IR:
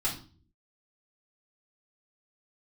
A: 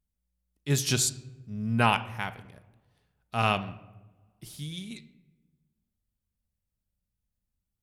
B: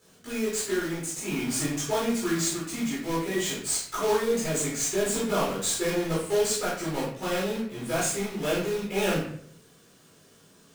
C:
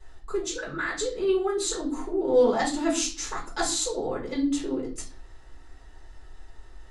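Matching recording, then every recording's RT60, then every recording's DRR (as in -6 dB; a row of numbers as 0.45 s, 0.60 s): C; no single decay rate, 0.60 s, 0.45 s; 9.5 dB, -9.0 dB, -6.0 dB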